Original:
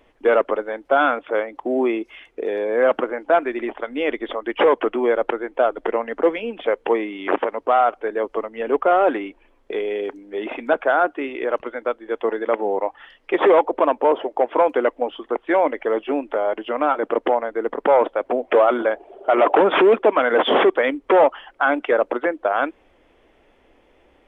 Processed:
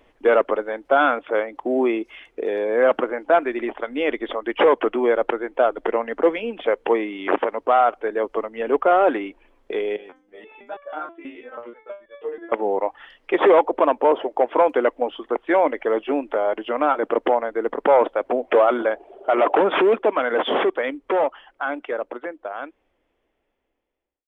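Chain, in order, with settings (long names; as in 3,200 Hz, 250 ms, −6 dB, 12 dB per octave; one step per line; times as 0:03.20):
fade-out on the ending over 6.22 s
0:09.96–0:12.52: step-sequenced resonator 6.2 Hz 91–570 Hz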